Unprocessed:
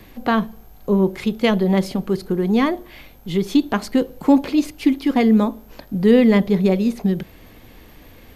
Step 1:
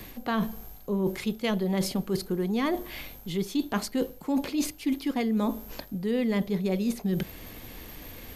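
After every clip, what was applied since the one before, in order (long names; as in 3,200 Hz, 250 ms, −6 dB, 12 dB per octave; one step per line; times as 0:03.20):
high-shelf EQ 4,500 Hz +9 dB
reversed playback
downward compressor 6 to 1, threshold −25 dBFS, peak gain reduction 16 dB
reversed playback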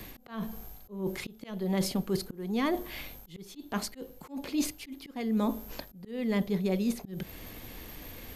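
volume swells 280 ms
level −1.5 dB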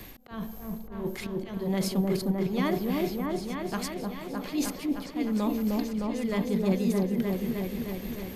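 echo whose low-pass opens from repeat to repeat 307 ms, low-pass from 750 Hz, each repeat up 1 octave, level 0 dB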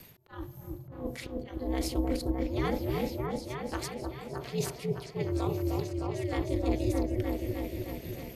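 noise reduction from a noise print of the clip's start 7 dB
ring modulation 130 Hz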